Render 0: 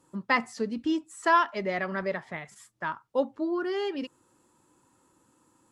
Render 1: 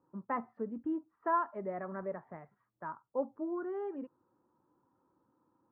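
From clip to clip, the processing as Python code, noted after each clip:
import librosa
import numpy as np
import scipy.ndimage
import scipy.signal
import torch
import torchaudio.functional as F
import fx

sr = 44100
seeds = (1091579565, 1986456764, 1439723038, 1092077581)

y = scipy.signal.sosfilt(scipy.signal.butter(4, 1300.0, 'lowpass', fs=sr, output='sos'), x)
y = fx.low_shelf(y, sr, hz=60.0, db=-10.0)
y = y * librosa.db_to_amplitude(-7.5)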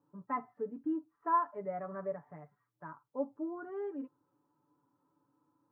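y = x + 0.7 * np.pad(x, (int(6.9 * sr / 1000.0), 0))[:len(x)]
y = fx.hpss(y, sr, part='percussive', gain_db=-6)
y = y * librosa.db_to_amplitude(-2.0)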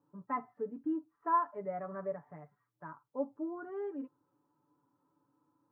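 y = x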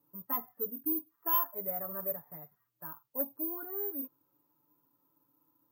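y = (np.kron(x[::3], np.eye(3)[0]) * 3)[:len(x)]
y = 10.0 ** (-15.5 / 20.0) * np.tanh(y / 10.0 ** (-15.5 / 20.0))
y = y * librosa.db_to_amplitude(-2.0)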